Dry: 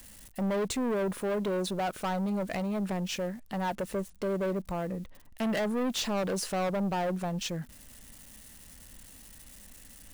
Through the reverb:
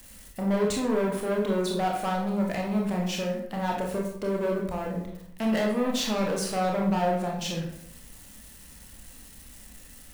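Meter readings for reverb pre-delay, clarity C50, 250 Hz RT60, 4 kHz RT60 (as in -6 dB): 24 ms, 3.5 dB, 0.85 s, 0.50 s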